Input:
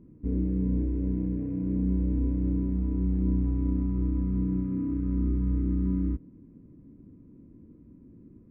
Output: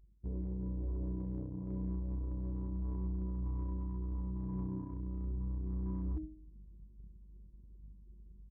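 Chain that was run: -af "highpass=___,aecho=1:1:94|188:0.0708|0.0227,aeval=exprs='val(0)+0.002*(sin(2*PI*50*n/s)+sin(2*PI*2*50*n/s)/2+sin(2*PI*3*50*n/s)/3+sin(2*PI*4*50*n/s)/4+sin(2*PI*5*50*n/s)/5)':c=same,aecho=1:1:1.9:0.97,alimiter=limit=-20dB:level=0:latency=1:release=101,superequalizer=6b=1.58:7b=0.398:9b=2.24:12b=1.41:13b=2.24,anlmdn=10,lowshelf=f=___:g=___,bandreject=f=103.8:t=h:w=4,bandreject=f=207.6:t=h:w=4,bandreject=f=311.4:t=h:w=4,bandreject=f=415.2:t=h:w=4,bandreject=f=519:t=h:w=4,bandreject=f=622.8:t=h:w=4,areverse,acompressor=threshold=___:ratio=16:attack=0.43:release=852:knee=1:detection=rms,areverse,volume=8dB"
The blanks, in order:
45, 170, -8, -40dB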